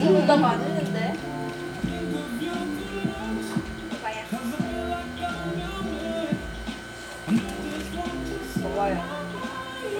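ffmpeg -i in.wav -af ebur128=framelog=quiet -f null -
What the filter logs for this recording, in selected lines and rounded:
Integrated loudness:
  I:         -28.2 LUFS
  Threshold: -38.2 LUFS
Loudness range:
  LRA:         3.8 LU
  Threshold: -49.7 LUFS
  LRA low:   -30.5 LUFS
  LRA high:  -26.7 LUFS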